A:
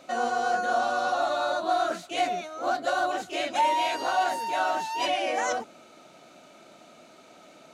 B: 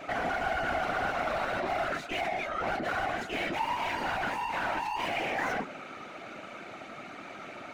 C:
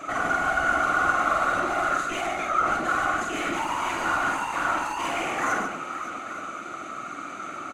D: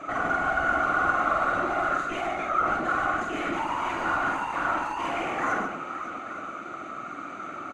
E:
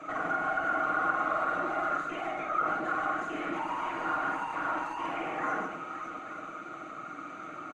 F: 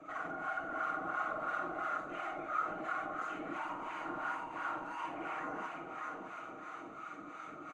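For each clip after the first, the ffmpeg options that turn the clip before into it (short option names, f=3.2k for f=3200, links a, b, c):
-filter_complex "[0:a]asplit=2[a][b];[b]highpass=f=720:p=1,volume=29dB,asoftclip=type=tanh:threshold=-14dB[c];[a][c]amix=inputs=2:normalize=0,lowpass=f=1.1k:p=1,volume=-6dB,equalizer=f=125:t=o:w=1:g=-7,equalizer=f=250:t=o:w=1:g=5,equalizer=f=500:t=o:w=1:g=-7,equalizer=f=1k:t=o:w=1:g=-4,equalizer=f=2k:t=o:w=1:g=6,equalizer=f=4k:t=o:w=1:g=-4,equalizer=f=8k:t=o:w=1:g=-3,afftfilt=real='hypot(re,im)*cos(2*PI*random(0))':imag='hypot(re,im)*sin(2*PI*random(1))':win_size=512:overlap=0.75"
-af "superequalizer=6b=1.78:10b=3.55:15b=3.98:16b=2.82,aecho=1:1:48|145|561|883:0.631|0.447|0.224|0.158"
-af "lowpass=f=2k:p=1"
-filter_complex "[0:a]aecho=1:1:6.4:0.41,acrossover=split=150|2700[a][b][c];[a]acompressor=threshold=-54dB:ratio=6[d];[c]alimiter=level_in=18dB:limit=-24dB:level=0:latency=1:release=194,volume=-18dB[e];[d][b][e]amix=inputs=3:normalize=0,volume=-5.5dB"
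-filter_complex "[0:a]aecho=1:1:602|1204|1806|2408|3010|3612:0.501|0.236|0.111|0.052|0.0245|0.0115,acrossover=split=720[a][b];[a]aeval=exprs='val(0)*(1-0.7/2+0.7/2*cos(2*PI*2.9*n/s))':c=same[c];[b]aeval=exprs='val(0)*(1-0.7/2-0.7/2*cos(2*PI*2.9*n/s))':c=same[d];[c][d]amix=inputs=2:normalize=0,areverse,acompressor=mode=upward:threshold=-37dB:ratio=2.5,areverse,volume=-5.5dB"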